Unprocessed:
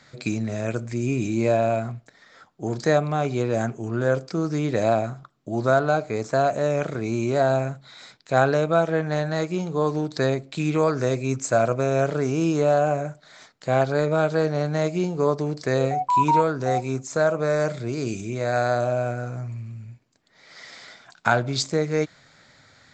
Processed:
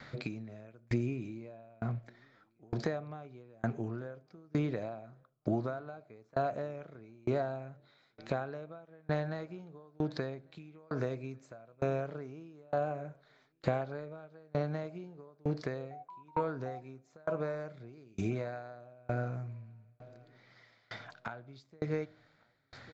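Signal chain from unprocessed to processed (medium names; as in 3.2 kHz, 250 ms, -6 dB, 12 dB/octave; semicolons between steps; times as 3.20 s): compression 10:1, threshold -31 dBFS, peak gain reduction 18 dB; distance through air 190 m; feedback delay 1150 ms, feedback 56%, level -23 dB; on a send at -23 dB: reverberation RT60 1.2 s, pre-delay 15 ms; on the sum: sawtooth tremolo in dB decaying 1.1 Hz, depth 32 dB; trim +6 dB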